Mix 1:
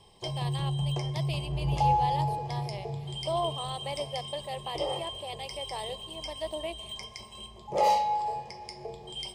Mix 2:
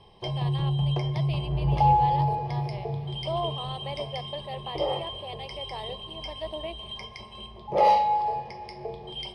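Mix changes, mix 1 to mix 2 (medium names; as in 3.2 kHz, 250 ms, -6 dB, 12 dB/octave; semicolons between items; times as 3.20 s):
background +4.5 dB; master: add boxcar filter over 6 samples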